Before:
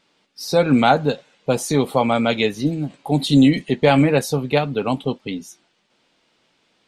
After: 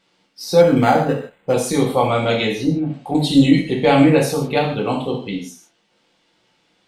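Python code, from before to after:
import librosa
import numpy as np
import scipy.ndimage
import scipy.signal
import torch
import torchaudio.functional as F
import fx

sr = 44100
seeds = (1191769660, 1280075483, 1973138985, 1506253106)

y = fx.env_lowpass_down(x, sr, base_hz=870.0, full_db=-15.0, at=(2.54, 3.15))
y = fx.rev_gated(y, sr, seeds[0], gate_ms=190, shape='falling', drr_db=-1.5)
y = fx.resample_linear(y, sr, factor=8, at=(0.61, 1.54))
y = y * 10.0 ** (-2.5 / 20.0)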